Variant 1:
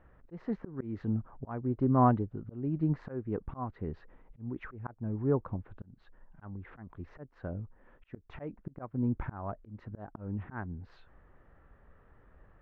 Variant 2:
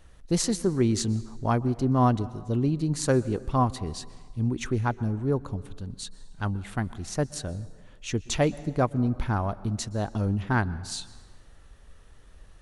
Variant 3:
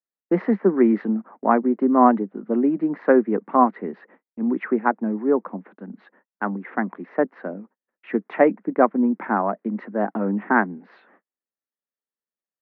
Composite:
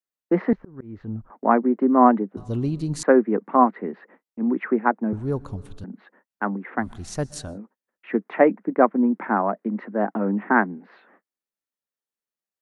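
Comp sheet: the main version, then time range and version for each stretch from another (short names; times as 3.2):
3
0.53–1.3 from 1
2.37–3.03 from 2
5.13–5.84 from 2
6.85–7.51 from 2, crossfade 0.16 s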